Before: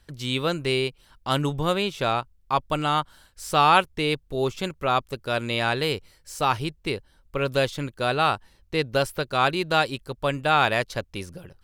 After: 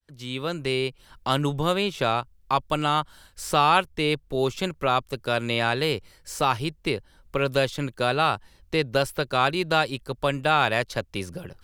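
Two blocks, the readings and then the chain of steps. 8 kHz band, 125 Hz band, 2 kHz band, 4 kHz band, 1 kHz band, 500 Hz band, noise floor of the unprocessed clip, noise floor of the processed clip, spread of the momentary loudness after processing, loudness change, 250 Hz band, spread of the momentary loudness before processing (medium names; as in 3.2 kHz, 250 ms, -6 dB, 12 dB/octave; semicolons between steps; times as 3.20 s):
+1.0 dB, 0.0 dB, -0.5 dB, -0.5 dB, -0.5 dB, +0.5 dB, -61 dBFS, -58 dBFS, 11 LU, -0.5 dB, +0.5 dB, 12 LU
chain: fade-in on the opening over 1.10 s; three bands compressed up and down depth 40%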